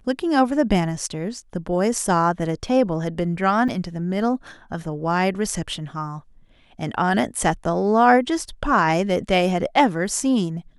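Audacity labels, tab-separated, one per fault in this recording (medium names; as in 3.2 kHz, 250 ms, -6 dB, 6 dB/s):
3.680000	3.690000	dropout 6.1 ms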